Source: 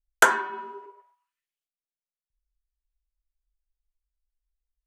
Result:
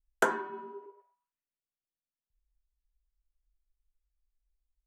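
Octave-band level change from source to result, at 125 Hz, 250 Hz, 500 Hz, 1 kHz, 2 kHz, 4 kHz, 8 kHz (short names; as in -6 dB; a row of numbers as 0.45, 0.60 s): n/a, 0.0 dB, -3.0 dB, -9.0 dB, -11.5 dB, -14.0 dB, -15.0 dB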